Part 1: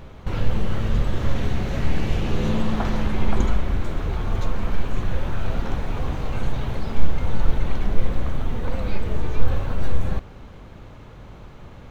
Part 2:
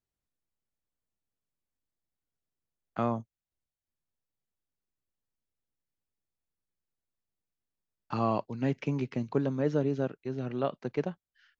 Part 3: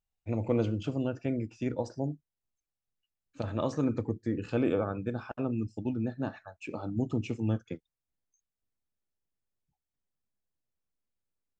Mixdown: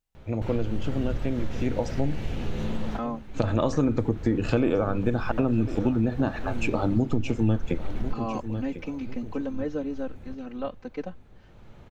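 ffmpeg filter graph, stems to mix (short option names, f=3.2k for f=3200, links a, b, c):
-filter_complex "[0:a]equalizer=f=1.1k:t=o:w=0.21:g=-5.5,adelay=150,volume=-7.5dB,asplit=2[a][b];[b]volume=-23.5dB[c];[1:a]aecho=1:1:3.9:0.97,volume=-5dB,asplit=2[d][e];[2:a]dynaudnorm=f=280:g=17:m=14dB,volume=3dB,asplit=2[f][g];[g]volume=-18.5dB[h];[e]apad=whole_len=531447[i];[a][i]sidechaincompress=threshold=-43dB:ratio=8:attack=5.7:release=582[j];[c][h]amix=inputs=2:normalize=0,aecho=0:1:1048|2096|3144|4192:1|0.31|0.0961|0.0298[k];[j][d][f][k]amix=inputs=4:normalize=0,acompressor=threshold=-21dB:ratio=4"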